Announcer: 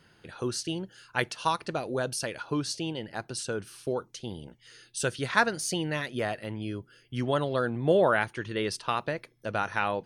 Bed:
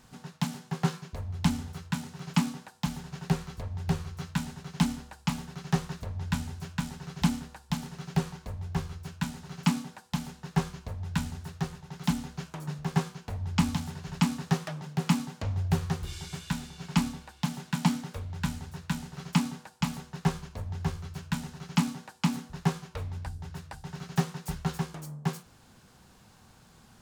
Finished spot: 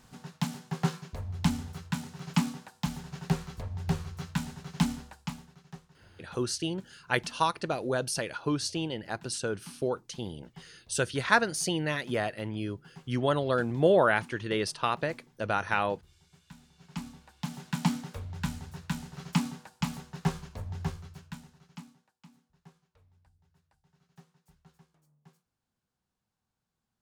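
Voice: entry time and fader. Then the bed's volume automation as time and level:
5.95 s, +0.5 dB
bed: 5.06 s -1 dB
5.88 s -23.5 dB
16.26 s -23.5 dB
17.69 s -2 dB
20.83 s -2 dB
22.24 s -29 dB

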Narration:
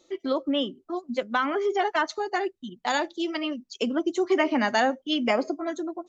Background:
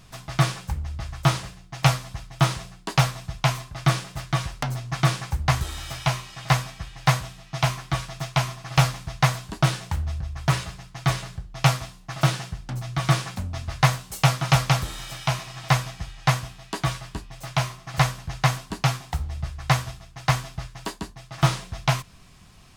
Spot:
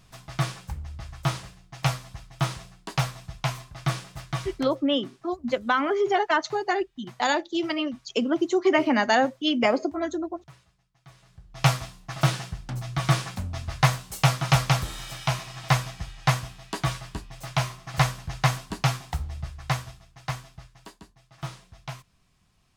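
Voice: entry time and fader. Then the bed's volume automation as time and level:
4.35 s, +2.0 dB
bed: 4.55 s -6 dB
4.91 s -29 dB
11.1 s -29 dB
11.64 s -1.5 dB
19.05 s -1.5 dB
21.1 s -15.5 dB

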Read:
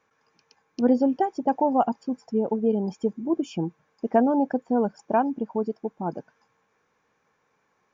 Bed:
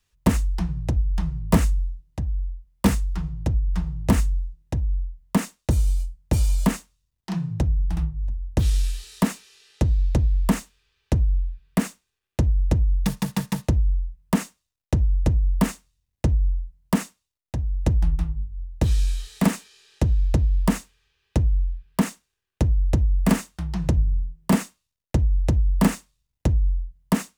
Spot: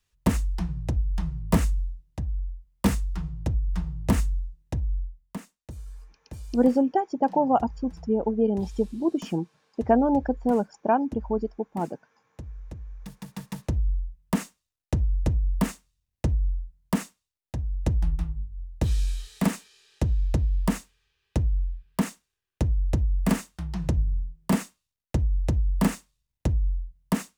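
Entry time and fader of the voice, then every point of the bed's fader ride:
5.75 s, 0.0 dB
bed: 5.05 s -3.5 dB
5.47 s -19.5 dB
12.98 s -19.5 dB
13.84 s -4 dB

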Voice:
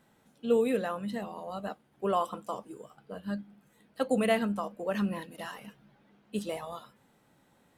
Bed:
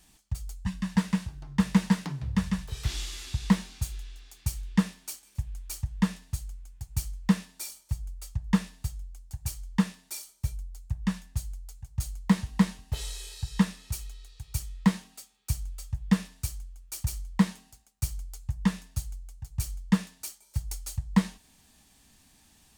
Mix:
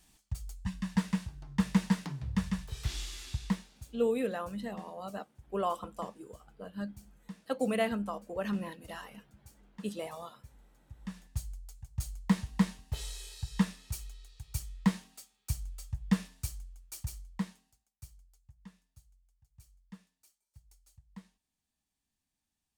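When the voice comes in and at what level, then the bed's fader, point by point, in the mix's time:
3.50 s, -3.5 dB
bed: 3.33 s -4.5 dB
4.06 s -23 dB
10.79 s -23 dB
11.36 s -4.5 dB
16.76 s -4.5 dB
18.61 s -27 dB

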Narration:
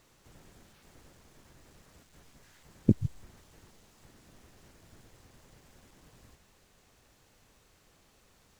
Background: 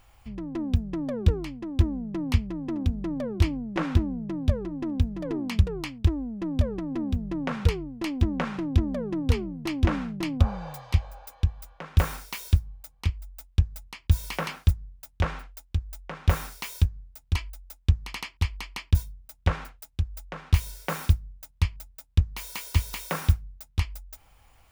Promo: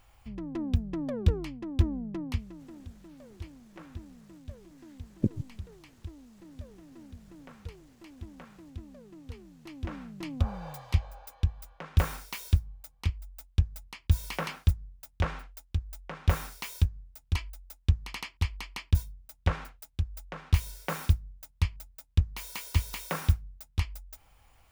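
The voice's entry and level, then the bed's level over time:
2.35 s, -4.0 dB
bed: 2.08 s -3 dB
2.88 s -20.5 dB
9.33 s -20.5 dB
10.7 s -3 dB

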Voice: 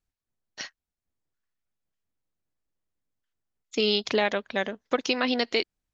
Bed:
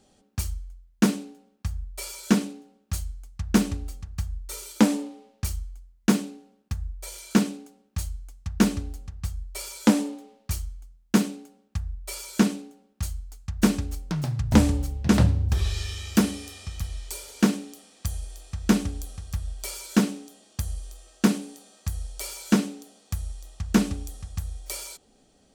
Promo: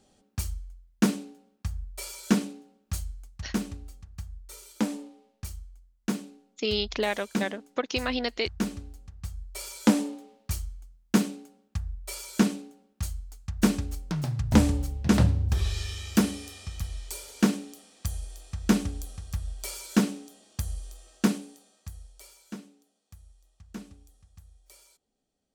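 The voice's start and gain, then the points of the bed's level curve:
2.85 s, -3.5 dB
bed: 3.25 s -2.5 dB
3.49 s -9 dB
8.94 s -9 dB
9.68 s -2 dB
21.16 s -2 dB
22.59 s -20.5 dB

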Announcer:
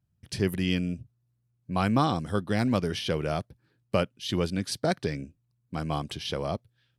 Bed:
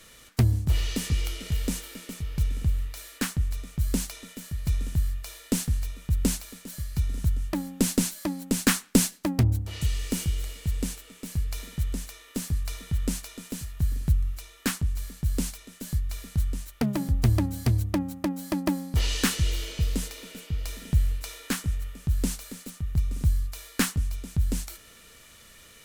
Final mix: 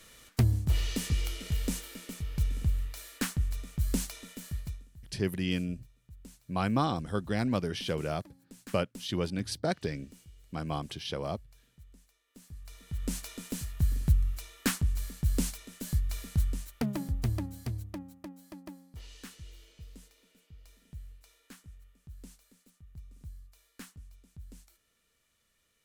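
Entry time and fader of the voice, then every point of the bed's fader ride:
4.80 s, -4.0 dB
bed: 4.57 s -3.5 dB
4.89 s -26.5 dB
12.24 s -26.5 dB
13.26 s -1.5 dB
16.36 s -1.5 dB
19.03 s -23 dB

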